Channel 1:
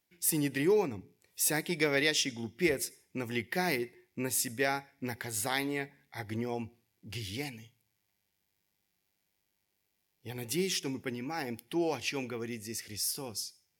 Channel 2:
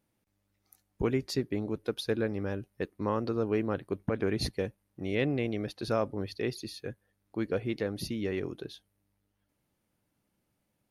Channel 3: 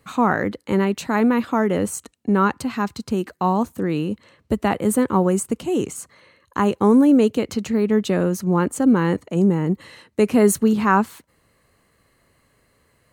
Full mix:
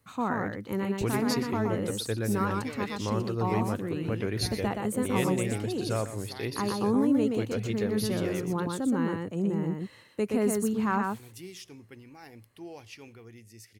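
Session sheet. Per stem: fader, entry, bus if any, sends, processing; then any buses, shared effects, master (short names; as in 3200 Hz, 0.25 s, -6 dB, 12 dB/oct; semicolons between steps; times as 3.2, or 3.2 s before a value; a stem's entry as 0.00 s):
-12.5 dB, 0.85 s, no send, no echo send, dry
-3.0 dB, 0.00 s, no send, echo send -13 dB, high shelf 4500 Hz +12 dB
-12.0 dB, 0.00 s, no send, echo send -3.5 dB, dry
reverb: off
echo: echo 0.122 s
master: bell 110 Hz +11.5 dB 0.24 oct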